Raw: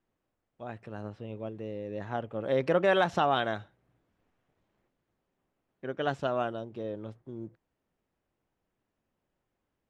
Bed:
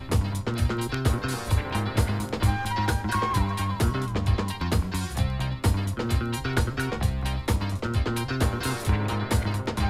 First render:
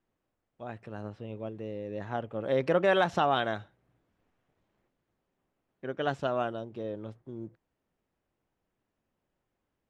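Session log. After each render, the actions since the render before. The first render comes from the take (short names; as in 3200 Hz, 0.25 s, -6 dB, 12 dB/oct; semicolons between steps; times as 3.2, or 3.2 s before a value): nothing audible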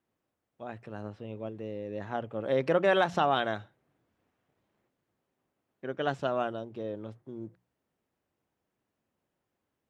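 HPF 70 Hz; notches 60/120/180 Hz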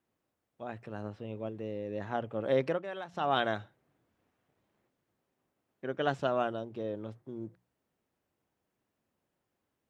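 2.58–3.38 dip -16 dB, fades 0.25 s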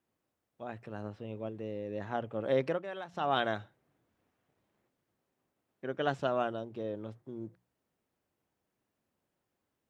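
gain -1 dB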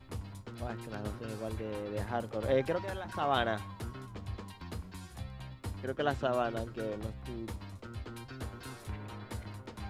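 add bed -17.5 dB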